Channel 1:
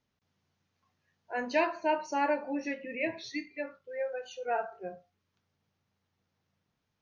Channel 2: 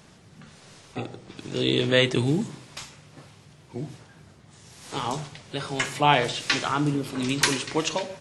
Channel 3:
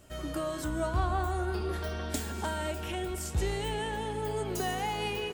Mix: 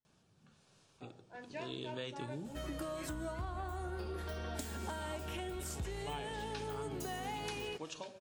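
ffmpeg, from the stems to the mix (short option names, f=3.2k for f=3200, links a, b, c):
-filter_complex "[0:a]volume=-16.5dB[a];[1:a]bandreject=f=2k:w=5.1,adelay=50,volume=-18dB[b];[2:a]adelay=2450,volume=-2dB[c];[a][b][c]amix=inputs=3:normalize=0,acompressor=threshold=-38dB:ratio=6"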